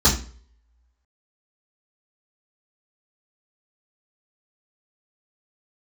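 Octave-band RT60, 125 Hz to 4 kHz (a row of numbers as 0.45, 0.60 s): 0.50, 0.40, 0.50, 0.40, 0.40, 0.35 s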